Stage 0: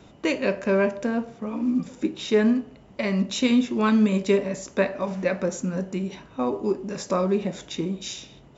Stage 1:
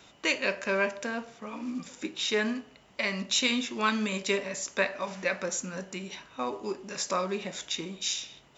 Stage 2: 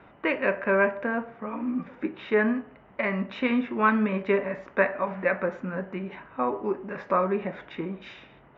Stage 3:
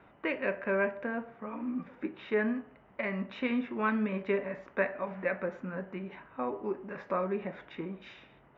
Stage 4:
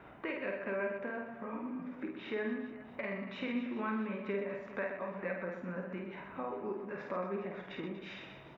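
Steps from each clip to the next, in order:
tilt shelf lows -9 dB, about 770 Hz; trim -4.5 dB
low-pass 1.9 kHz 24 dB/octave; trim +6 dB
dynamic bell 1.1 kHz, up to -4 dB, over -35 dBFS, Q 1.5; trim -6 dB
compression 2:1, threshold -49 dBFS, peak gain reduction 14 dB; reverse bouncing-ball echo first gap 50 ms, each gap 1.5×, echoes 5; trim +3.5 dB

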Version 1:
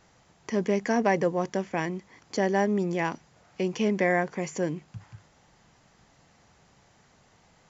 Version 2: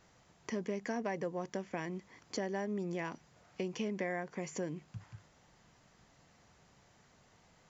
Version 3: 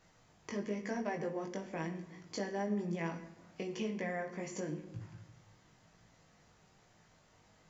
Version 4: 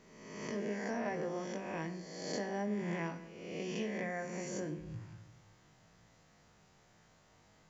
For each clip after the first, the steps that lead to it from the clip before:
band-stop 820 Hz, Q 20; compression 3:1, threshold -31 dBFS, peak gain reduction 10 dB; trim -4.5 dB
chorus 1 Hz, delay 18 ms, depth 2.3 ms; simulated room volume 410 m³, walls mixed, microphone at 0.55 m; trim +1.5 dB
reverse spectral sustain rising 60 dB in 1.20 s; trim -2.5 dB

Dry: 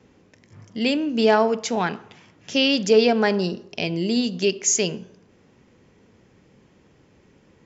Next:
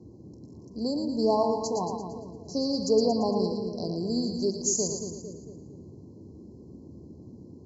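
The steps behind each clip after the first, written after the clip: band noise 65–360 Hz -41 dBFS; FFT band-reject 1.1–4 kHz; two-band feedback delay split 560 Hz, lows 227 ms, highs 114 ms, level -5.5 dB; trim -7 dB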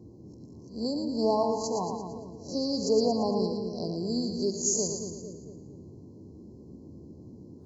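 reverse spectral sustain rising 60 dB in 0.31 s; trim -2 dB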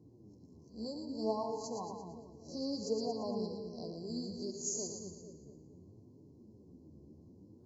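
flange 0.64 Hz, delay 6.6 ms, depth 7.7 ms, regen +33%; trim -6.5 dB

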